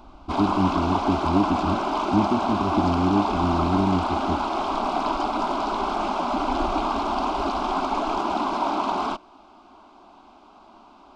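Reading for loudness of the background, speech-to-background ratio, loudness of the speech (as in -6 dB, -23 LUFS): -25.5 LUFS, 0.0 dB, -25.5 LUFS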